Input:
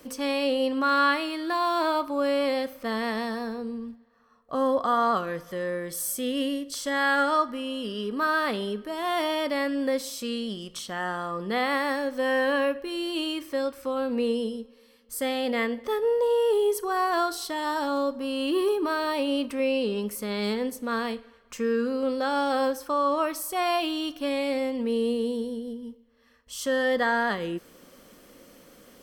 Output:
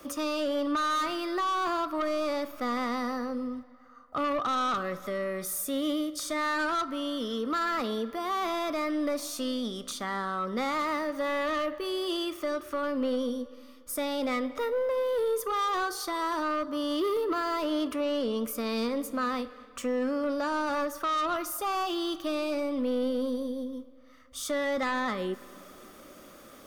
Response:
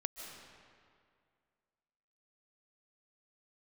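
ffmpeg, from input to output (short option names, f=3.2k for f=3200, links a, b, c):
-filter_complex "[0:a]equalizer=f=1.1k:t=o:w=0.32:g=10,asoftclip=type=tanh:threshold=-21.5dB,acrossover=split=300[a][b];[b]acompressor=threshold=-36dB:ratio=1.5[c];[a][c]amix=inputs=2:normalize=0,asplit=2[d][e];[1:a]atrim=start_sample=2205,asetrate=29106,aresample=44100[f];[e][f]afir=irnorm=-1:irlink=0,volume=-19dB[g];[d][g]amix=inputs=2:normalize=0,asetrate=48000,aresample=44100"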